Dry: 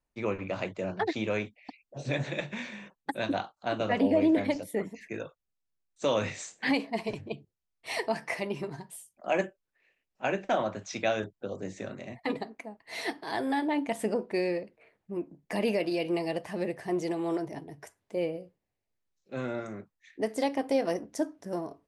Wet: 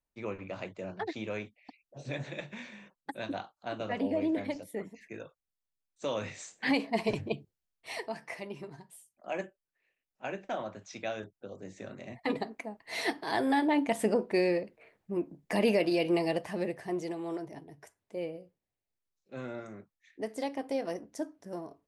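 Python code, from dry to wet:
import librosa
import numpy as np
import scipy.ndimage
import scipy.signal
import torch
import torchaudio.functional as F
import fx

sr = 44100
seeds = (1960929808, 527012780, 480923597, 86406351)

y = fx.gain(x, sr, db=fx.line((6.27, -6.5), (7.2, 5.0), (8.1, -8.0), (11.62, -8.0), (12.46, 2.0), (16.27, 2.0), (17.2, -6.0)))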